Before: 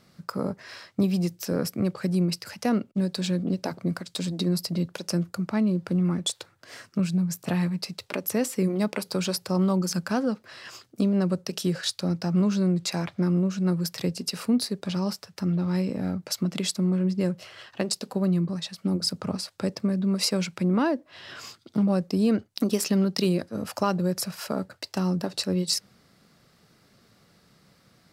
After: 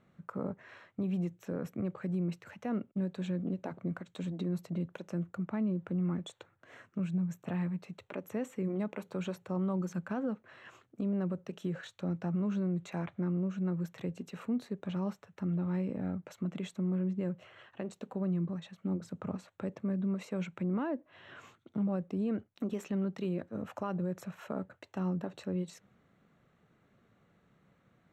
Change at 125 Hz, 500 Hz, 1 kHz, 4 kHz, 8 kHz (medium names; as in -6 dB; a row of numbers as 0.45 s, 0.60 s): -8.5 dB, -9.5 dB, -10.0 dB, -23.0 dB, under -20 dB